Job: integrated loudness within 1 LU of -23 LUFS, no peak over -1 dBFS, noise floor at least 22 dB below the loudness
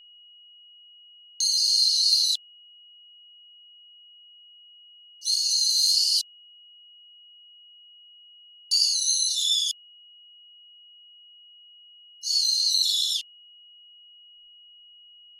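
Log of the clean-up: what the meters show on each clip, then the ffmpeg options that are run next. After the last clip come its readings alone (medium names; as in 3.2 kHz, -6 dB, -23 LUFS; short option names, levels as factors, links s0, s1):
steady tone 2.9 kHz; tone level -49 dBFS; loudness -21.0 LUFS; peak level -8.5 dBFS; loudness target -23.0 LUFS
-> -af "bandreject=f=2900:w=30"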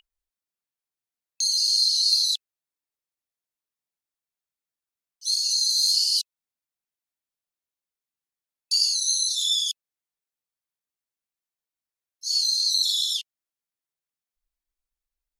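steady tone not found; loudness -21.0 LUFS; peak level -8.5 dBFS; loudness target -23.0 LUFS
-> -af "volume=0.794"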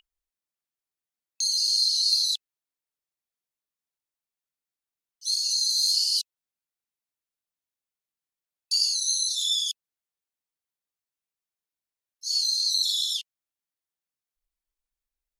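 loudness -23.0 LUFS; peak level -10.5 dBFS; noise floor -92 dBFS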